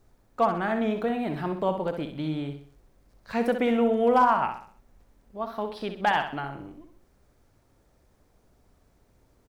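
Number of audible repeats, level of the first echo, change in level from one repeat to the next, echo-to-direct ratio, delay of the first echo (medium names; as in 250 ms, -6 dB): 4, -8.0 dB, -7.5 dB, -7.0 dB, 64 ms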